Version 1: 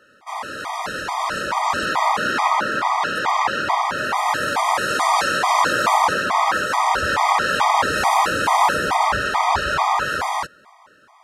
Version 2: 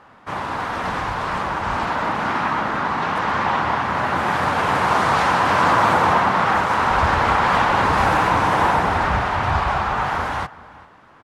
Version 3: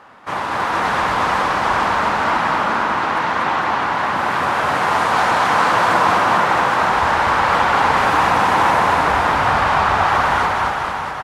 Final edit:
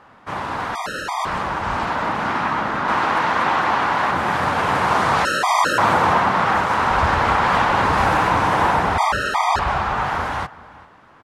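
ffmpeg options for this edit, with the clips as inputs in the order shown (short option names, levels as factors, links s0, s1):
-filter_complex "[0:a]asplit=3[s0][s1][s2];[1:a]asplit=5[s3][s4][s5][s6][s7];[s3]atrim=end=0.752[s8];[s0]atrim=start=0.748:end=1.252[s9];[s4]atrim=start=1.248:end=2.882[s10];[2:a]atrim=start=2.878:end=4.112[s11];[s5]atrim=start=4.108:end=5.252[s12];[s1]atrim=start=5.248:end=5.782[s13];[s6]atrim=start=5.778:end=8.982[s14];[s2]atrim=start=8.978:end=9.592[s15];[s7]atrim=start=9.588[s16];[s8][s9]acrossfade=d=0.004:c1=hsin:c2=hsin[s17];[s17][s10]acrossfade=d=0.004:c1=hsin:c2=hsin[s18];[s18][s11]acrossfade=d=0.004:c1=hsin:c2=hsin[s19];[s19][s12]acrossfade=d=0.004:c1=hsin:c2=hsin[s20];[s20][s13]acrossfade=d=0.004:c1=hsin:c2=hsin[s21];[s21][s14]acrossfade=d=0.004:c1=hsin:c2=hsin[s22];[s22][s15]acrossfade=d=0.004:c1=hsin:c2=hsin[s23];[s23][s16]acrossfade=d=0.004:c1=hsin:c2=hsin"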